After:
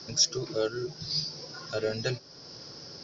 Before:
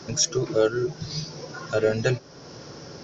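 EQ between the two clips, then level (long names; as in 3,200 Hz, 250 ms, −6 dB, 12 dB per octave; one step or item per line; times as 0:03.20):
low-pass with resonance 4,900 Hz, resonance Q 5.2
−8.5 dB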